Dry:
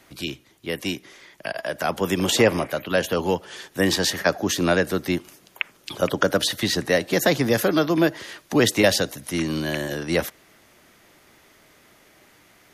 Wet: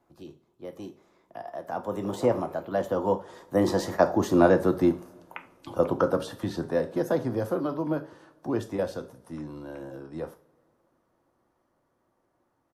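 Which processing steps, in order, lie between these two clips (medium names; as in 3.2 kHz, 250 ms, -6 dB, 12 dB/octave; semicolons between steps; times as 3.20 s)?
Doppler pass-by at 4.51 s, 24 m/s, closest 25 m; resonant high shelf 1.5 kHz -13.5 dB, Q 1.5; two-slope reverb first 0.33 s, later 2.5 s, from -27 dB, DRR 6.5 dB; resampled via 32 kHz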